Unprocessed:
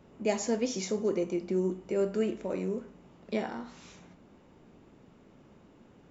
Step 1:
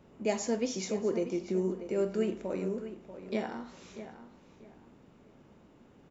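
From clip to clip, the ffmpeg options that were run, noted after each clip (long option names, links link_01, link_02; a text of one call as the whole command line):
ffmpeg -i in.wav -filter_complex "[0:a]asplit=2[link_01][link_02];[link_02]adelay=639,lowpass=frequency=3300:poles=1,volume=-11.5dB,asplit=2[link_03][link_04];[link_04]adelay=639,lowpass=frequency=3300:poles=1,volume=0.27,asplit=2[link_05][link_06];[link_06]adelay=639,lowpass=frequency=3300:poles=1,volume=0.27[link_07];[link_01][link_03][link_05][link_07]amix=inputs=4:normalize=0,volume=-1.5dB" out.wav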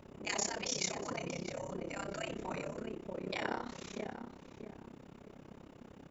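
ffmpeg -i in.wav -af "tremolo=f=33:d=0.947,afftfilt=real='re*lt(hypot(re,im),0.0447)':imag='im*lt(hypot(re,im),0.0447)':win_size=1024:overlap=0.75,volume=8.5dB" out.wav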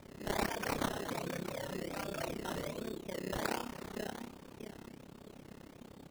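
ffmpeg -i in.wav -af "acrusher=samples=15:mix=1:aa=0.000001:lfo=1:lforange=9:lforate=1.3,volume=1dB" out.wav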